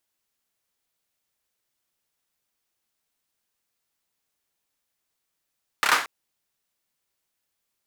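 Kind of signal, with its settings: hand clap length 0.23 s, bursts 4, apart 29 ms, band 1300 Hz, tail 0.38 s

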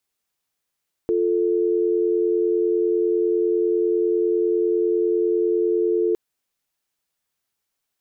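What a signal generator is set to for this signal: call progress tone dial tone, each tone -20 dBFS 5.06 s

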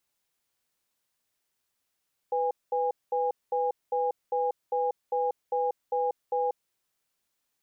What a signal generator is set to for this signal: cadence 497 Hz, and 818 Hz, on 0.19 s, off 0.21 s, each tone -27 dBFS 4.23 s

